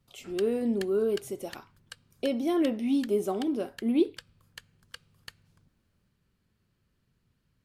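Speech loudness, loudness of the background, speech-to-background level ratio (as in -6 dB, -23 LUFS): -29.0 LUFS, -49.0 LUFS, 20.0 dB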